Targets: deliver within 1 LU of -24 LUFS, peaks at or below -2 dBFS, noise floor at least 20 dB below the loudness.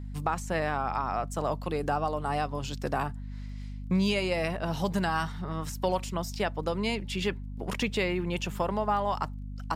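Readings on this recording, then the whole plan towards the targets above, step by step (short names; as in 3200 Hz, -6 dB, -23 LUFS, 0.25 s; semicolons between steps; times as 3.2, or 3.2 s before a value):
ticks 19/s; hum 50 Hz; harmonics up to 250 Hz; hum level -36 dBFS; loudness -30.5 LUFS; peak -14.5 dBFS; loudness target -24.0 LUFS
-> de-click; de-hum 50 Hz, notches 5; gain +6.5 dB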